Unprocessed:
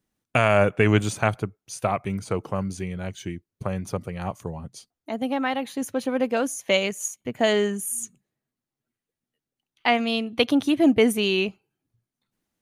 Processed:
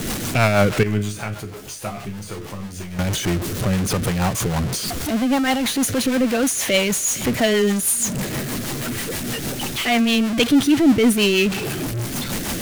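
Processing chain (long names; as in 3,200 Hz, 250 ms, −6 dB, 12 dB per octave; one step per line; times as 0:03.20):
converter with a step at zero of −24 dBFS
dynamic equaliser 550 Hz, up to −5 dB, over −30 dBFS, Q 1.3
0:00.83–0:02.99: resonators tuned to a chord C#2 major, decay 0.31 s
soft clipping −14 dBFS, distortion −16 dB
rotating-speaker cabinet horn 6.3 Hz
level +7.5 dB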